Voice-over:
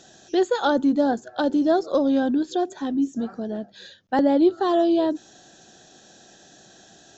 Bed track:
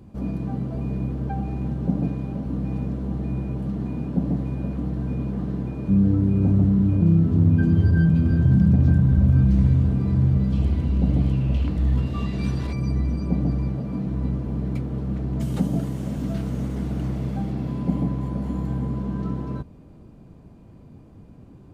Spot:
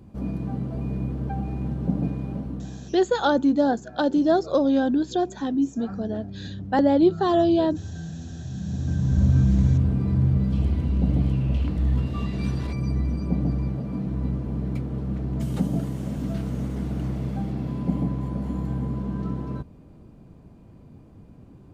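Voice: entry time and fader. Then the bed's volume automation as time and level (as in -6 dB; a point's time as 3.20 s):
2.60 s, 0.0 dB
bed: 2.38 s -1.5 dB
3.03 s -17.5 dB
8.51 s -17.5 dB
9.22 s -1.5 dB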